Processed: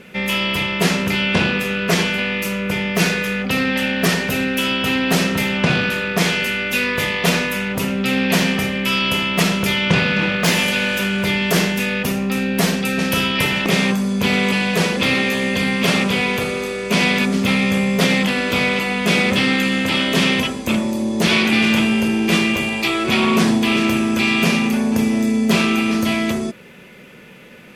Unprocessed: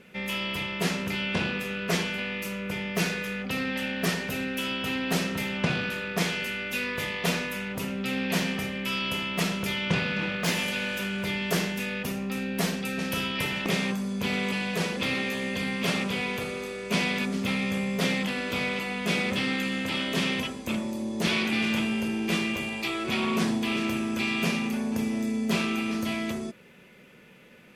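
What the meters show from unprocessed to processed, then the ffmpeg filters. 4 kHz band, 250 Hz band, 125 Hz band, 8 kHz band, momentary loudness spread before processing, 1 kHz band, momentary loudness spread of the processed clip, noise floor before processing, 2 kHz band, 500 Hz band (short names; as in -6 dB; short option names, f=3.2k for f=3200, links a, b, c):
+10.5 dB, +11.0 dB, +10.5 dB, +10.5 dB, 5 LU, +10.5 dB, 4 LU, -42 dBFS, +11.0 dB, +10.5 dB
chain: -af "alimiter=level_in=15dB:limit=-1dB:release=50:level=0:latency=1,volume=-4dB"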